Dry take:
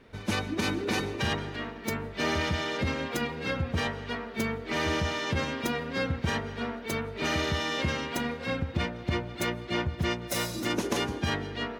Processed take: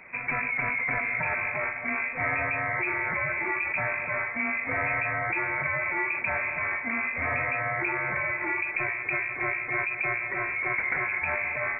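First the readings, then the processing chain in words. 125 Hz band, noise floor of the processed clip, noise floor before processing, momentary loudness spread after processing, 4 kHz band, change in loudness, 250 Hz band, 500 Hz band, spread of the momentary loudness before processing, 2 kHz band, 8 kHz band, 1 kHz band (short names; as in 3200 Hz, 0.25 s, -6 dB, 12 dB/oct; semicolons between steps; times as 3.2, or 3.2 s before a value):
-8.0 dB, -35 dBFS, -42 dBFS, 2 LU, under -40 dB, +3.5 dB, -8.5 dB, -3.5 dB, 4 LU, +8.5 dB, under -40 dB, +3.0 dB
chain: in parallel at 0 dB: negative-ratio compressor -36 dBFS, ratio -1; on the sum: low shelf 180 Hz -5.5 dB; inverted band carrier 2500 Hz; low shelf 68 Hz -8.5 dB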